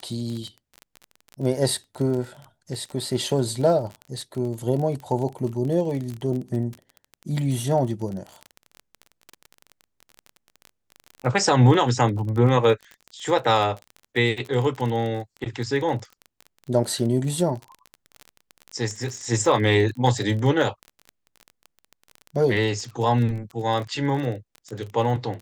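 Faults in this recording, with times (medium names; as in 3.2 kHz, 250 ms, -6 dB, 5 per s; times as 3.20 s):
crackle 28 per s -29 dBFS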